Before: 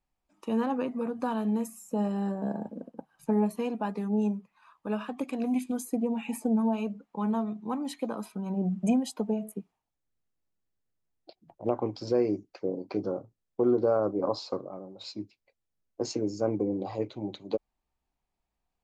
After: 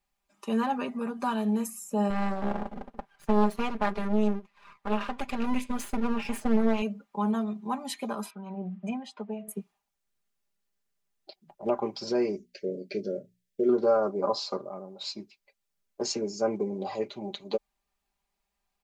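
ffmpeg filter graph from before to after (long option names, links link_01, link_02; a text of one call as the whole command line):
ffmpeg -i in.wav -filter_complex "[0:a]asettb=1/sr,asplit=3[link_01][link_02][link_03];[link_01]atrim=end=2.104[link_04];[link_02]atrim=start=2.1:end=6.82,asetpts=PTS-STARTPTS,afade=type=in:duration=0.004:curve=qsin,afade=type=out:start_time=4.716:duration=0.004:curve=qsin,aeval=exprs='max(val(0),0)':channel_layout=same,acontrast=31,highshelf=frequency=5800:gain=-10.5[link_05];[link_03]atrim=start=6.816[link_06];[link_04][link_05]acrossfade=duration=0.004:curve1=hsin:curve2=qsin[link_07];[link_07][link_06]acrossfade=duration=0.004:curve1=qsin:curve2=hsin,asettb=1/sr,asplit=3[link_08][link_09][link_10];[link_08]atrim=end=8.304[link_11];[link_09]atrim=start=8.3:end=9.48,asetpts=PTS-STARTPTS,afade=type=in:duration=0.004:curve=qsin,afade=type=out:start_time=1.176:duration=0.004:curve=qsin,highpass=120,lowpass=2300,equalizer=frequency=280:width=0.35:gain=-8.5[link_12];[link_10]atrim=start=9.476[link_13];[link_11][link_12]acrossfade=duration=0.004:curve1=hsin:curve2=qsin[link_14];[link_14][link_13]acrossfade=duration=0.004:curve1=qsin:curve2=hsin,asettb=1/sr,asplit=3[link_15][link_16][link_17];[link_15]atrim=end=12.354[link_18];[link_16]atrim=start=12.35:end=13.69,asetpts=PTS-STARTPTS,afade=type=in:duration=0.004:curve=qsin,afade=type=out:start_time=1.336:duration=0.004:curve=qsin,asuperstop=centerf=1000:order=8:qfactor=0.96,bandreject=frequency=60:width_type=h:width=6,bandreject=frequency=120:width_type=h:width=6,bandreject=frequency=180:width_type=h:width=6,bandreject=frequency=240:width_type=h:width=6[link_19];[link_17]atrim=start=13.686[link_20];[link_18][link_19]acrossfade=duration=0.004:curve1=hsin:curve2=qsin[link_21];[link_21][link_20]acrossfade=duration=0.004:curve1=qsin:curve2=hsin,tiltshelf=frequency=700:gain=-4.5,aecho=1:1:5:0.81" out.wav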